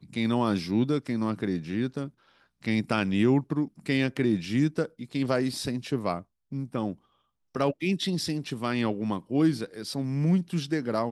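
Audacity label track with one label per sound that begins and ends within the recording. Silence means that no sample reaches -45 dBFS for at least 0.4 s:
2.630000	6.940000	sound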